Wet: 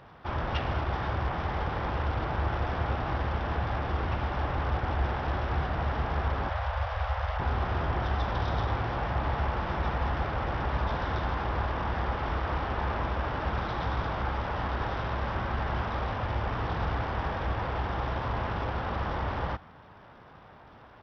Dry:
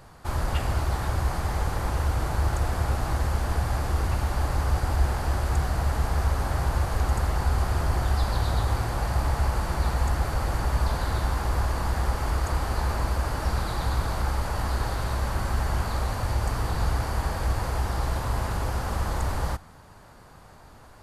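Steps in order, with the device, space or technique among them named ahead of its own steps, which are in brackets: 6.49–7.4 elliptic band-stop 100–540 Hz, stop band 40 dB; Bluetooth headset (HPF 120 Hz 6 dB/oct; downsampling 8000 Hz; SBC 64 kbps 44100 Hz)

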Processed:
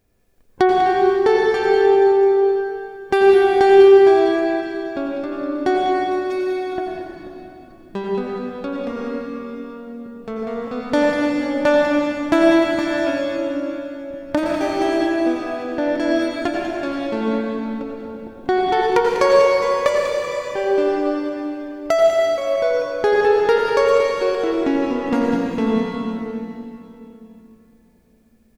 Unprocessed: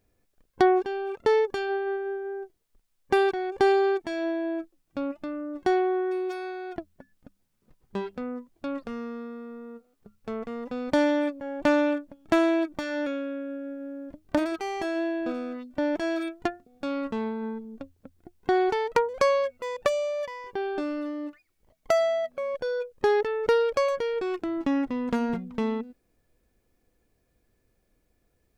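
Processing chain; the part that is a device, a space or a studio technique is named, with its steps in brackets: cave (echo 0.196 s -10 dB; reverb RT60 3.1 s, pre-delay 81 ms, DRR -2 dB); gain +4.5 dB

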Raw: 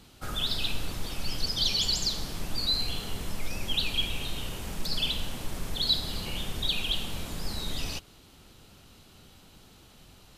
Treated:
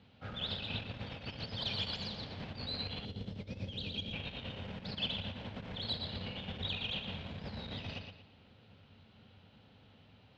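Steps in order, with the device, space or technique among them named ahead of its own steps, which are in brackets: analogue delay pedal into a guitar amplifier (analogue delay 0.116 s, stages 4096, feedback 35%, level -5 dB; tube stage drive 19 dB, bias 0.8; speaker cabinet 89–3500 Hz, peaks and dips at 96 Hz +9 dB, 220 Hz +4 dB, 340 Hz -8 dB, 520 Hz +4 dB, 1200 Hz -5 dB); 3.05–4.13 band shelf 1400 Hz -10.5 dB 2.3 oct; gain -2 dB

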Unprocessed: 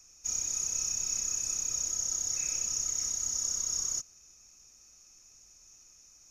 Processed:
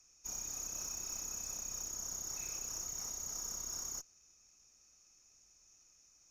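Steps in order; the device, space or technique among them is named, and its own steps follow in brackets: tube preamp driven hard (tube stage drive 30 dB, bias 0.6; low shelf 190 Hz -3 dB; high shelf 6600 Hz -4.5 dB); gain -3.5 dB

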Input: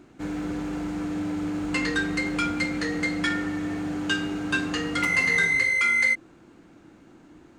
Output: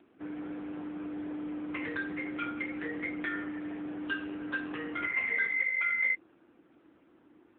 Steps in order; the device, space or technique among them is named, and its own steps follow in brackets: 4.19–4.84 HPF 79 Hz 12 dB/oct; telephone (BPF 280–3500 Hz; gain -5.5 dB; AMR-NB 6.7 kbps 8000 Hz)

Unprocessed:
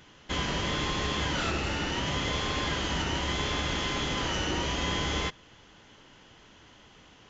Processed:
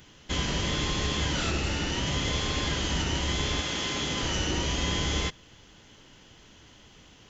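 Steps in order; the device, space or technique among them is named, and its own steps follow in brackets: smiley-face EQ (low shelf 130 Hz +4 dB; bell 1100 Hz -4 dB 1.9 oct; high shelf 6500 Hz +8.5 dB); 3.6–4.22 HPF 320 Hz -> 89 Hz 6 dB/oct; gain +1 dB

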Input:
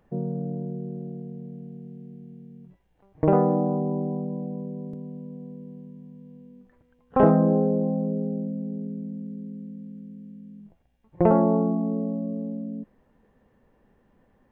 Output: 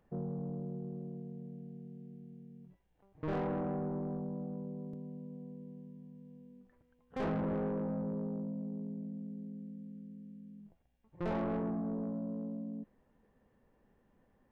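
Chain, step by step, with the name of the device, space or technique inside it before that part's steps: saturation between pre-emphasis and de-emphasis (high shelf 2400 Hz +8.5 dB; soft clip -24 dBFS, distortion -5 dB; high shelf 2400 Hz -8.5 dB); gain -7.5 dB

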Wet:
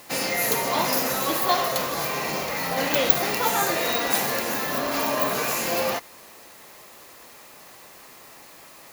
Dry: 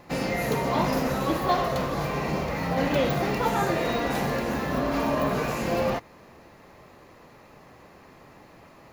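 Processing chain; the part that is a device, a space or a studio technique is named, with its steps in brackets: turntable without a phono preamp (RIAA curve recording; white noise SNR 25 dB); gain +2 dB

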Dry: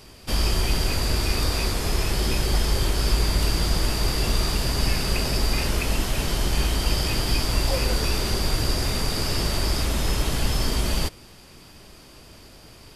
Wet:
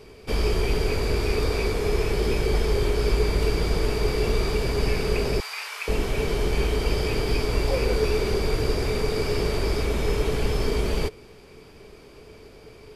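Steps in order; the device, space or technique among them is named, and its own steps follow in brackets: inside a helmet (high shelf 3800 Hz -9.5 dB; small resonant body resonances 430/2300 Hz, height 15 dB, ringing for 55 ms); 5.4–5.88 inverse Chebyshev high-pass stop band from 160 Hz, stop band 80 dB; gain -1.5 dB

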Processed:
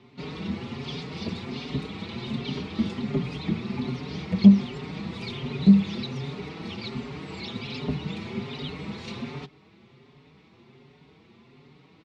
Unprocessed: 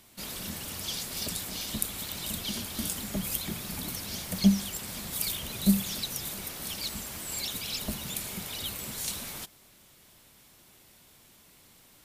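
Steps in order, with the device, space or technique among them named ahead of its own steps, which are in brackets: barber-pole flanger into a guitar amplifier (endless flanger 5.3 ms +1.3 Hz; soft clip -16.5 dBFS, distortion -16 dB; speaker cabinet 85–3400 Hz, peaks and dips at 140 Hz +10 dB, 240 Hz +7 dB, 410 Hz +9 dB, 600 Hz -7 dB, 1600 Hz -9 dB, 3100 Hz -7 dB); gain +8.5 dB

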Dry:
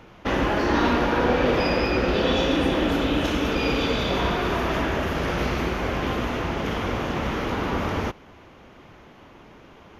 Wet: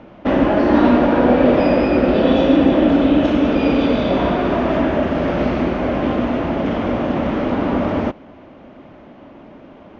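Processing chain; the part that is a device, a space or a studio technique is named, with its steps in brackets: inside a cardboard box (LPF 3700 Hz 12 dB/oct; small resonant body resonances 260/590 Hz, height 12 dB, ringing for 20 ms)

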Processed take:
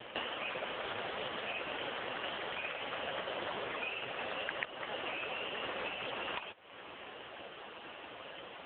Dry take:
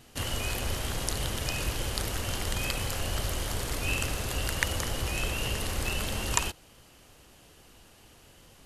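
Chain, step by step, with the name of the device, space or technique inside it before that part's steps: voicemail (BPF 420–3100 Hz; compressor 10:1, threshold -49 dBFS, peak gain reduction 26.5 dB; gain +18 dB; AMR-NB 5.15 kbps 8000 Hz)

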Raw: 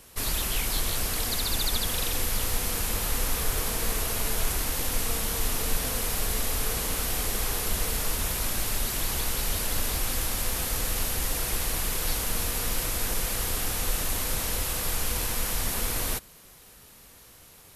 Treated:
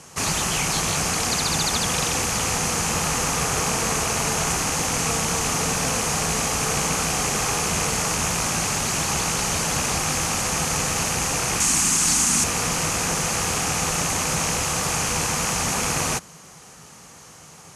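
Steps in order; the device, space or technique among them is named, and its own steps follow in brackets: 11.6–12.44 ten-band EQ 125 Hz -9 dB, 250 Hz +10 dB, 500 Hz -12 dB, 8000 Hz +9 dB; car door speaker with a rattle (rattling part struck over -37 dBFS, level -26 dBFS; speaker cabinet 93–9400 Hz, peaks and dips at 160 Hz +10 dB, 810 Hz +6 dB, 1200 Hz +5 dB, 3700 Hz -6 dB, 6400 Hz +8 dB); gain +7 dB

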